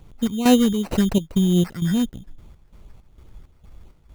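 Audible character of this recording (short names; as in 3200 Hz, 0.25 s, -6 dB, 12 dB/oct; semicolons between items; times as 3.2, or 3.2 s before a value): chopped level 2.2 Hz, depth 65%, duty 60%; a quantiser's noise floor 12-bit, dither none; phasing stages 8, 2.6 Hz, lowest notch 570–2500 Hz; aliases and images of a low sample rate 3400 Hz, jitter 0%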